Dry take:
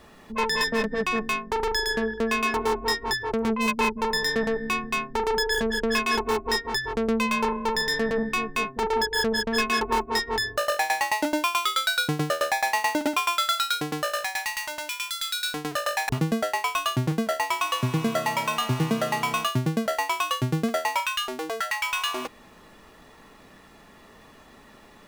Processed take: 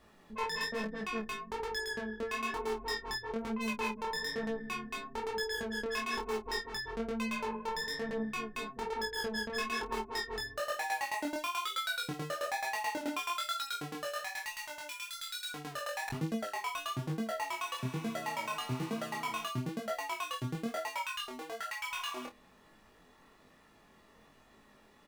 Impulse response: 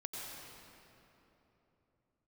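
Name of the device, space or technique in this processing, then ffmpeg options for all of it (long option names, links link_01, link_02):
double-tracked vocal: -filter_complex "[0:a]asplit=2[link_01][link_02];[link_02]adelay=28,volume=-10.5dB[link_03];[link_01][link_03]amix=inputs=2:normalize=0,flanger=delay=18:depth=6.5:speed=1.1,volume=-8.5dB"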